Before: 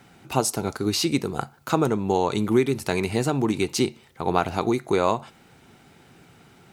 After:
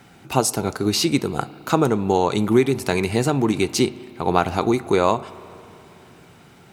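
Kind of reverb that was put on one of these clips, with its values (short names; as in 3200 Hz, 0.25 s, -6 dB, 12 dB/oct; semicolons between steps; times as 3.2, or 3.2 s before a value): spring tank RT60 3.3 s, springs 34/53 ms, chirp 30 ms, DRR 18 dB; gain +3.5 dB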